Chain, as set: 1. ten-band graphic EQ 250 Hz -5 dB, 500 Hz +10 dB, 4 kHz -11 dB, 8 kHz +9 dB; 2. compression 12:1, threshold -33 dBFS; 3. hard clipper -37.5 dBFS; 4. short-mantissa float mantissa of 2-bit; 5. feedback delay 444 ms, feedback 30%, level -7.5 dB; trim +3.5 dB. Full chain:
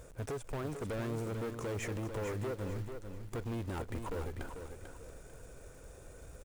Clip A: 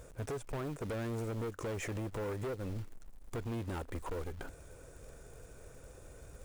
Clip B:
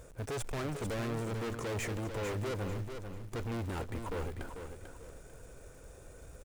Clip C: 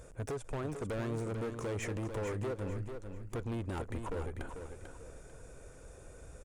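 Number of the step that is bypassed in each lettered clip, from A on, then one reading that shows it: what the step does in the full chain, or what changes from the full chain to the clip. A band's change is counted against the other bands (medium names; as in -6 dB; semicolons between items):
5, crest factor change -3.5 dB; 2, mean gain reduction 5.0 dB; 4, distortion -21 dB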